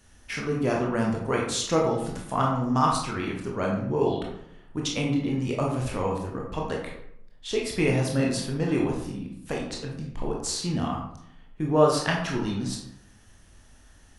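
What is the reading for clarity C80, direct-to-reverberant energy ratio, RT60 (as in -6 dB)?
7.0 dB, -2.0 dB, 0.70 s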